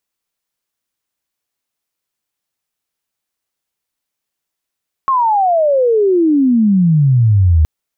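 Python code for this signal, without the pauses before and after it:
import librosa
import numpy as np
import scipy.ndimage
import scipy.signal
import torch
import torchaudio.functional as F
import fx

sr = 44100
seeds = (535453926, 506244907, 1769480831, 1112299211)

y = fx.chirp(sr, length_s=2.57, from_hz=1100.0, to_hz=75.0, law='logarithmic', from_db=-10.0, to_db=-6.5)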